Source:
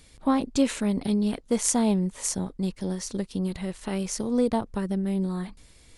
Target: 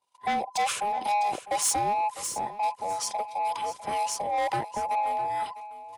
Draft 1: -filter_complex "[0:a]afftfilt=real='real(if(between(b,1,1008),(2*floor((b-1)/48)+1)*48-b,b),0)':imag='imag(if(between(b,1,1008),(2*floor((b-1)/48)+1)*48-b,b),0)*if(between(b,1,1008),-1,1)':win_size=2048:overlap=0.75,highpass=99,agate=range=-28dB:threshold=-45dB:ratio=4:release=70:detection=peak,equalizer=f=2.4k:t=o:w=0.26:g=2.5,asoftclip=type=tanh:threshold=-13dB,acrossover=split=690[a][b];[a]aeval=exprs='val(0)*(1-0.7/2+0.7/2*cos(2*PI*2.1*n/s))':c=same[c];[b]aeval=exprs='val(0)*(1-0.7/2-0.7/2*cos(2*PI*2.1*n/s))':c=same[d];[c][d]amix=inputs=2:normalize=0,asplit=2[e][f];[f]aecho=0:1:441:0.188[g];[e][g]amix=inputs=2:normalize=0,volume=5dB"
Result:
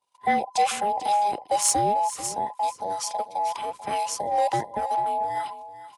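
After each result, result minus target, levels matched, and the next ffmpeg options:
soft clip: distortion -13 dB; echo 0.212 s early
-filter_complex "[0:a]afftfilt=real='real(if(between(b,1,1008),(2*floor((b-1)/48)+1)*48-b,b),0)':imag='imag(if(between(b,1,1008),(2*floor((b-1)/48)+1)*48-b,b),0)*if(between(b,1,1008),-1,1)':win_size=2048:overlap=0.75,highpass=99,agate=range=-28dB:threshold=-45dB:ratio=4:release=70:detection=peak,equalizer=f=2.4k:t=o:w=0.26:g=2.5,asoftclip=type=tanh:threshold=-24dB,acrossover=split=690[a][b];[a]aeval=exprs='val(0)*(1-0.7/2+0.7/2*cos(2*PI*2.1*n/s))':c=same[c];[b]aeval=exprs='val(0)*(1-0.7/2-0.7/2*cos(2*PI*2.1*n/s))':c=same[d];[c][d]amix=inputs=2:normalize=0,asplit=2[e][f];[f]aecho=0:1:441:0.188[g];[e][g]amix=inputs=2:normalize=0,volume=5dB"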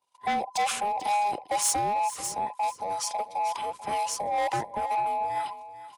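echo 0.212 s early
-filter_complex "[0:a]afftfilt=real='real(if(between(b,1,1008),(2*floor((b-1)/48)+1)*48-b,b),0)':imag='imag(if(between(b,1,1008),(2*floor((b-1)/48)+1)*48-b,b),0)*if(between(b,1,1008),-1,1)':win_size=2048:overlap=0.75,highpass=99,agate=range=-28dB:threshold=-45dB:ratio=4:release=70:detection=peak,equalizer=f=2.4k:t=o:w=0.26:g=2.5,asoftclip=type=tanh:threshold=-24dB,acrossover=split=690[a][b];[a]aeval=exprs='val(0)*(1-0.7/2+0.7/2*cos(2*PI*2.1*n/s))':c=same[c];[b]aeval=exprs='val(0)*(1-0.7/2-0.7/2*cos(2*PI*2.1*n/s))':c=same[d];[c][d]amix=inputs=2:normalize=0,asplit=2[e][f];[f]aecho=0:1:653:0.188[g];[e][g]amix=inputs=2:normalize=0,volume=5dB"

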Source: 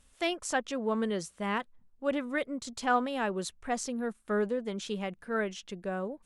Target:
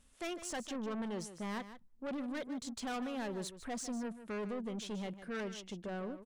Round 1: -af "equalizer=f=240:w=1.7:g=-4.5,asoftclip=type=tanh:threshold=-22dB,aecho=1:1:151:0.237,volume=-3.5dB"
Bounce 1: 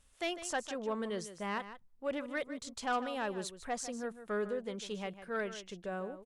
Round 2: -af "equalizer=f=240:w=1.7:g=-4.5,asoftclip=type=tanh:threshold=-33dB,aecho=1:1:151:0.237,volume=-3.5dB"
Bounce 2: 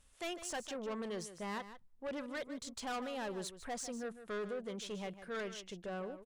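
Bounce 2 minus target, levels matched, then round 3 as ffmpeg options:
250 Hz band -4.0 dB
-af "equalizer=f=240:w=1.7:g=5,asoftclip=type=tanh:threshold=-33dB,aecho=1:1:151:0.237,volume=-3.5dB"

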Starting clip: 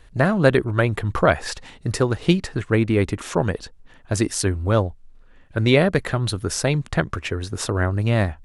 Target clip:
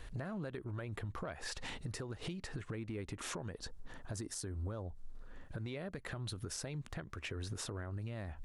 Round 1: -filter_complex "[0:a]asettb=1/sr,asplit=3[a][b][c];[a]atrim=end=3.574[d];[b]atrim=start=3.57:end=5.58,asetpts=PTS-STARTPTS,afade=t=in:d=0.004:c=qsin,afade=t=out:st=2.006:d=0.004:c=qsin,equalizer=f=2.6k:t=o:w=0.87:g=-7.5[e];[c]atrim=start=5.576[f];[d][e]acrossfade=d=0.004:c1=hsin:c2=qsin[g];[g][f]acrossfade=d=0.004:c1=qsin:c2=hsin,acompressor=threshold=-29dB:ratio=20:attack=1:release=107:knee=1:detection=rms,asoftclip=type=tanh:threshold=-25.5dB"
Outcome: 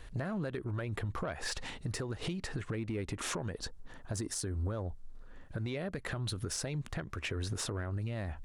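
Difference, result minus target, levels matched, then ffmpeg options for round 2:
compressor: peak gain reduction -6 dB
-filter_complex "[0:a]asettb=1/sr,asplit=3[a][b][c];[a]atrim=end=3.574[d];[b]atrim=start=3.57:end=5.58,asetpts=PTS-STARTPTS,afade=t=in:d=0.004:c=qsin,afade=t=out:st=2.006:d=0.004:c=qsin,equalizer=f=2.6k:t=o:w=0.87:g=-7.5[e];[c]atrim=start=5.576[f];[d][e]acrossfade=d=0.004:c1=hsin:c2=qsin[g];[g][f]acrossfade=d=0.004:c1=qsin:c2=hsin,acompressor=threshold=-35.5dB:ratio=20:attack=1:release=107:knee=1:detection=rms,asoftclip=type=tanh:threshold=-25.5dB"

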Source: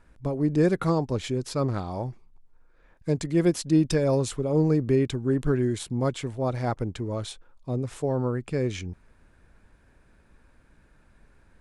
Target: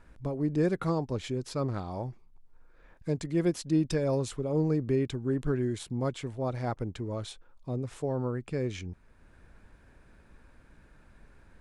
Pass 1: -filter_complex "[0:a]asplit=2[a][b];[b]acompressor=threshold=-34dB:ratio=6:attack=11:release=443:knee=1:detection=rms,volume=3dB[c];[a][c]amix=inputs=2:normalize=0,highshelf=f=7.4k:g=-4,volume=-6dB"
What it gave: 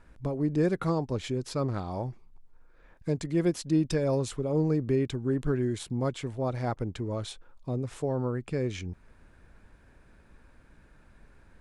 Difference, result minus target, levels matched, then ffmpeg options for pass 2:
compressor: peak gain reduction -8.5 dB
-filter_complex "[0:a]asplit=2[a][b];[b]acompressor=threshold=-44dB:ratio=6:attack=11:release=443:knee=1:detection=rms,volume=3dB[c];[a][c]amix=inputs=2:normalize=0,highshelf=f=7.4k:g=-4,volume=-6dB"

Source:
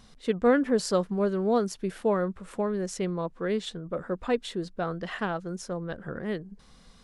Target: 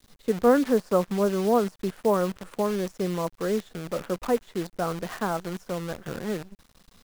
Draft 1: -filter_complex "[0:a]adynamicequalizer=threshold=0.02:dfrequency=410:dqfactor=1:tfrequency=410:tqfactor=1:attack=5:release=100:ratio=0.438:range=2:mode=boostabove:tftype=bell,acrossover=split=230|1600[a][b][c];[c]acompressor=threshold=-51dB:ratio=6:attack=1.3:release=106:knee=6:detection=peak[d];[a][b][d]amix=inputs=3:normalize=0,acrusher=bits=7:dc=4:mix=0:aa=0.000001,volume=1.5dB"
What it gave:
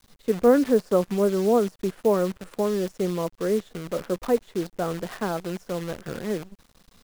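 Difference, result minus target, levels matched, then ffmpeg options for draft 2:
1000 Hz band -3.5 dB
-filter_complex "[0:a]adynamicequalizer=threshold=0.02:dfrequency=1000:dqfactor=1:tfrequency=1000:tqfactor=1:attack=5:release=100:ratio=0.438:range=2:mode=boostabove:tftype=bell,acrossover=split=230|1600[a][b][c];[c]acompressor=threshold=-51dB:ratio=6:attack=1.3:release=106:knee=6:detection=peak[d];[a][b][d]amix=inputs=3:normalize=0,acrusher=bits=7:dc=4:mix=0:aa=0.000001,volume=1.5dB"

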